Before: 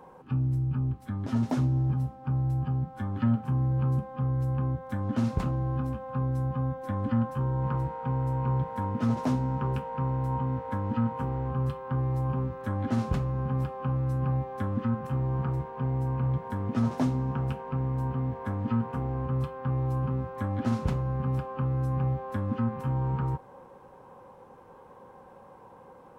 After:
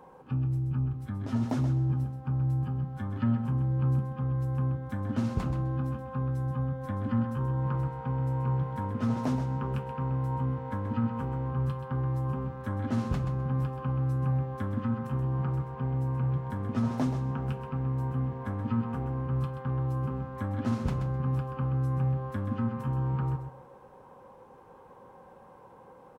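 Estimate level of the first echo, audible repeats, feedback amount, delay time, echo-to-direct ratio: -8.5 dB, 2, 19%, 0.129 s, -8.5 dB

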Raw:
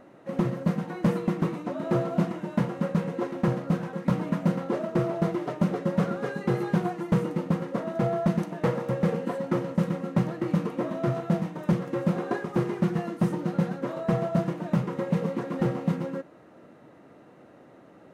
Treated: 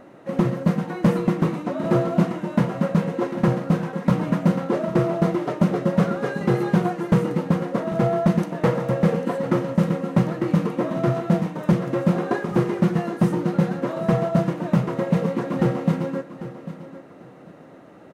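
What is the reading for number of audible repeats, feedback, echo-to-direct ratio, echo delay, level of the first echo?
2, 21%, -14.0 dB, 0.796 s, -14.0 dB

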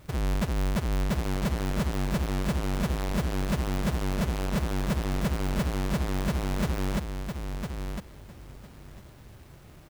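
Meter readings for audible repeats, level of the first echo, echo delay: 2, -6.5 dB, 1.005 s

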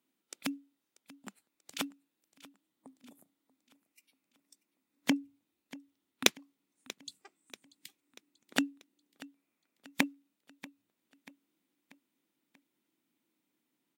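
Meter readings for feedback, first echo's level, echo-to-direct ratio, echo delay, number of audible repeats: 49%, -19.5 dB, -18.5 dB, 0.637 s, 3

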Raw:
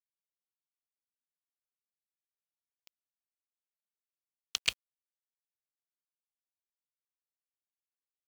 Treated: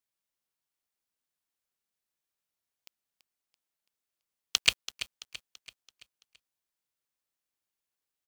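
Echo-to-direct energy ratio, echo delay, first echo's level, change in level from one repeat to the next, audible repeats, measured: -12.5 dB, 0.334 s, -13.5 dB, -6.5 dB, 4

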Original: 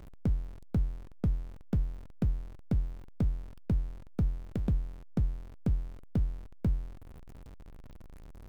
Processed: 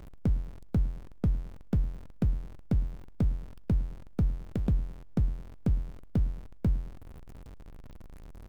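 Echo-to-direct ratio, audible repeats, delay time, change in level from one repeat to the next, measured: -20.5 dB, 2, 0.108 s, -5.5 dB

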